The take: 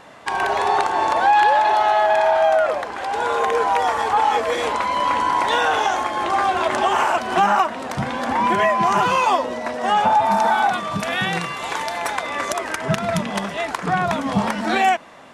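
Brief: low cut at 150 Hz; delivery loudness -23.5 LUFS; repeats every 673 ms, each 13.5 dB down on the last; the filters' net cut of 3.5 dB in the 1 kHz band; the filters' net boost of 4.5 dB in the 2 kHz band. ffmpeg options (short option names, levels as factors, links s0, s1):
-af "highpass=150,equalizer=f=1000:t=o:g=-6,equalizer=f=2000:t=o:g=8,aecho=1:1:673|1346:0.211|0.0444,volume=0.668"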